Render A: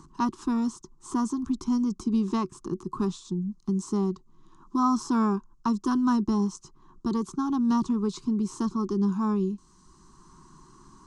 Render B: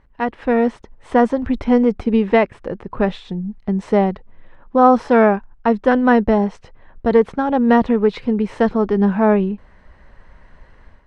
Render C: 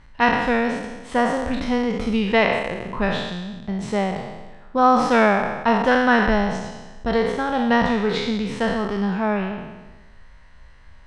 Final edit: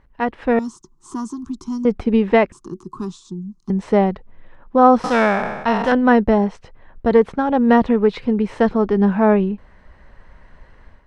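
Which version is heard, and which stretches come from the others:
B
0.59–1.85 from A
2.52–3.7 from A
5.04–5.92 from C

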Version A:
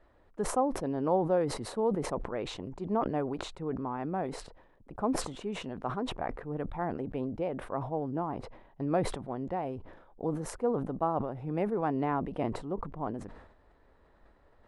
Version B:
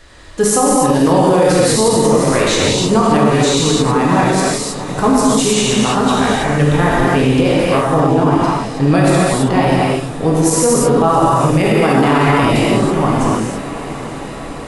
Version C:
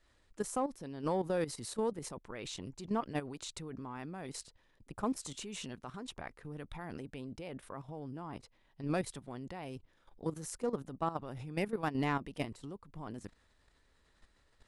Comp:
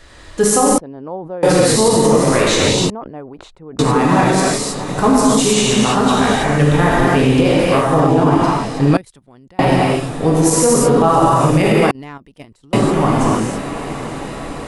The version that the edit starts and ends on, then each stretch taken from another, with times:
B
0.78–1.43 from A
2.9–3.79 from A
8.97–9.59 from C
11.91–12.73 from C

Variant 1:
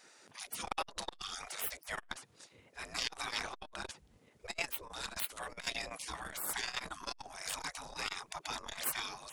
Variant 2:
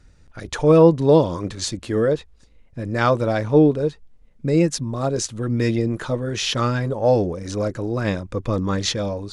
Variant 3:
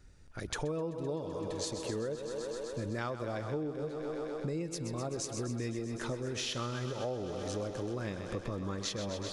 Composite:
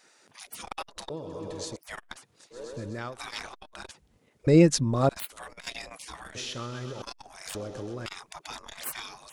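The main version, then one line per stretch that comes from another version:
1
1.1–1.76 from 3
2.55–3.13 from 3, crossfade 0.10 s
4.47–5.09 from 2
6.35–7.02 from 3
7.55–8.06 from 3

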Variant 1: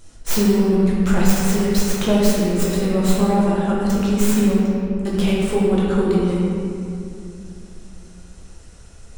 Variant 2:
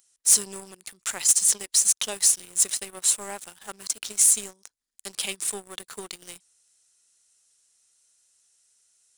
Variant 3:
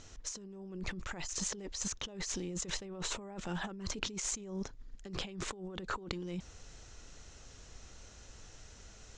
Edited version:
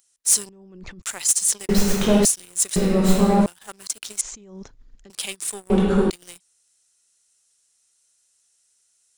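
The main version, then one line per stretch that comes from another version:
2
0.49–1.02 from 3
1.69–2.25 from 1
2.76–3.46 from 1
4.21–5.1 from 3
5.7–6.1 from 1

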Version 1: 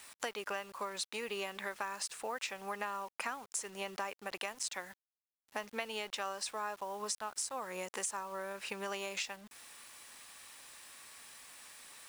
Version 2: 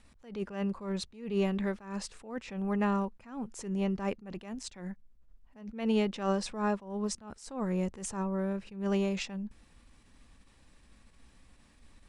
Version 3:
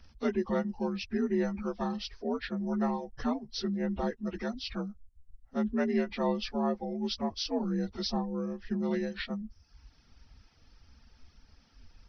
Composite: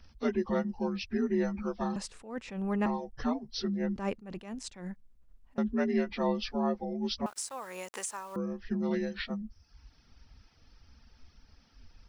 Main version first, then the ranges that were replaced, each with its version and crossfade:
3
1.96–2.86 from 2
3.96–5.58 from 2
7.26–8.36 from 1

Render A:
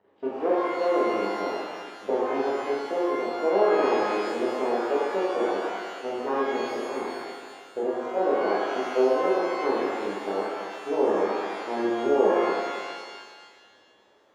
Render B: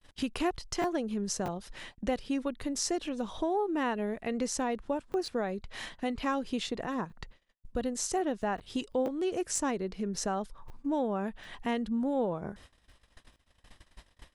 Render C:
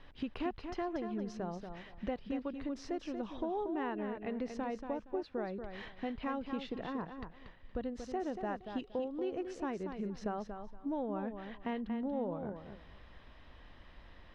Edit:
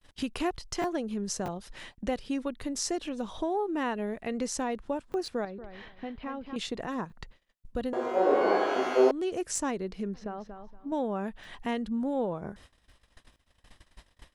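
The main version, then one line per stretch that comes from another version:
B
5.45–6.56 from C
7.93–9.11 from A
10.14–10.92 from C

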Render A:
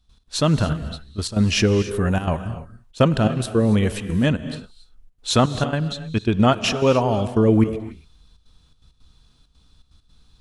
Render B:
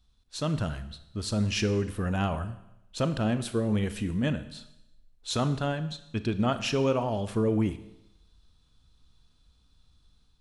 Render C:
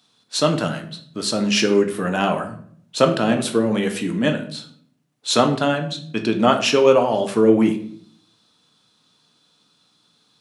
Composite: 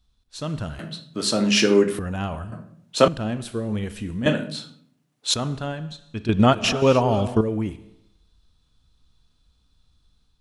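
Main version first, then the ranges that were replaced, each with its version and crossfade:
B
0.79–1.99 from C
2.52–3.08 from C
4.26–5.34 from C
6.29–7.41 from A

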